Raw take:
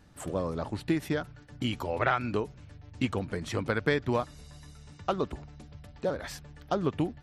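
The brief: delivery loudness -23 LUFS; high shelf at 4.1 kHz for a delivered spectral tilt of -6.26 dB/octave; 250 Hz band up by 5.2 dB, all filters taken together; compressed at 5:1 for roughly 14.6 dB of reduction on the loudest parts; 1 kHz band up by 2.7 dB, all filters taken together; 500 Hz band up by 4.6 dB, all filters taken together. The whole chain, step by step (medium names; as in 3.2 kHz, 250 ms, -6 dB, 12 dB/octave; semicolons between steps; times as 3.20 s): peaking EQ 250 Hz +5.5 dB; peaking EQ 500 Hz +3.5 dB; peaking EQ 1 kHz +3 dB; treble shelf 4.1 kHz -9 dB; compression 5:1, threshold -36 dBFS; trim +18.5 dB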